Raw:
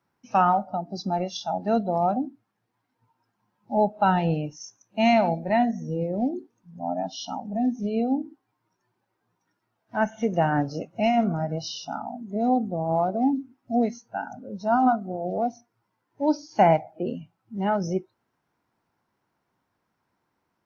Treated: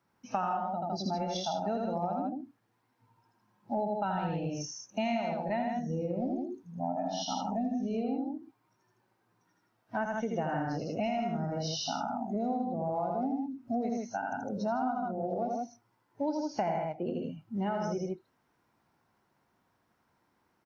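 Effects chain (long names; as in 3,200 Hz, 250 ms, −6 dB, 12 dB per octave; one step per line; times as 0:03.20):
loudspeakers that aren't time-aligned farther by 28 metres −3 dB, 54 metres −5 dB
downward compressor 6 to 1, threshold −30 dBFS, peak gain reduction 16.5 dB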